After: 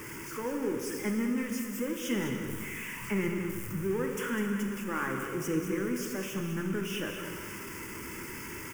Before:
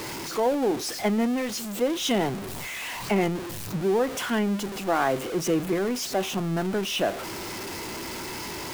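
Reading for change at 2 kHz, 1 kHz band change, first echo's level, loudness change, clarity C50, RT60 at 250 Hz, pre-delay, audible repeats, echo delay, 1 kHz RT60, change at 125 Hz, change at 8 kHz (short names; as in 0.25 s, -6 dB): -4.0 dB, -11.0 dB, -9.0 dB, -6.5 dB, 3.5 dB, 2.1 s, 6 ms, 1, 0.203 s, 2.2 s, -4.0 dB, -7.0 dB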